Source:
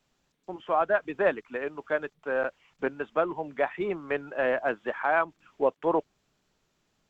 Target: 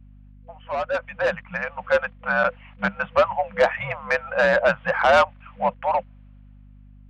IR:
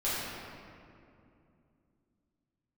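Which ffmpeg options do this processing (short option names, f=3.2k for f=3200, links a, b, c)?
-af "afftfilt=real='re*(1-between(b*sr/4096,270,560))':imag='im*(1-between(b*sr/4096,270,560))':win_size=4096:overlap=0.75,highpass=f=260:t=q:w=0.5412,highpass=f=260:t=q:w=1.307,lowpass=f=3k:t=q:w=0.5176,lowpass=f=3k:t=q:w=0.7071,lowpass=f=3k:t=q:w=1.932,afreqshift=-70,asoftclip=type=tanh:threshold=-23.5dB,dynaudnorm=f=260:g=11:m=13.5dB,aeval=exprs='val(0)+0.00501*(sin(2*PI*50*n/s)+sin(2*PI*2*50*n/s)/2+sin(2*PI*3*50*n/s)/3+sin(2*PI*4*50*n/s)/4+sin(2*PI*5*50*n/s)/5)':c=same"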